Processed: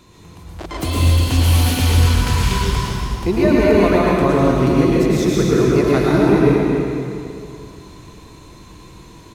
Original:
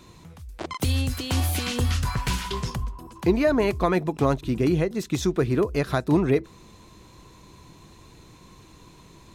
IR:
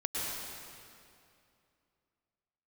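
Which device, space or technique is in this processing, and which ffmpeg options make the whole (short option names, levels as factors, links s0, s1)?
cave: -filter_complex "[0:a]aecho=1:1:268:0.335[s0];[1:a]atrim=start_sample=2205[s1];[s0][s1]afir=irnorm=-1:irlink=0,volume=1.26"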